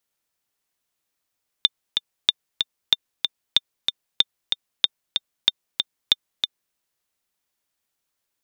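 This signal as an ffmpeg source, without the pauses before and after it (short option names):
-f lavfi -i "aevalsrc='pow(10,(-1.5-5.5*gte(mod(t,2*60/188),60/188))/20)*sin(2*PI*3600*mod(t,60/188))*exp(-6.91*mod(t,60/188)/0.03)':d=5.1:s=44100"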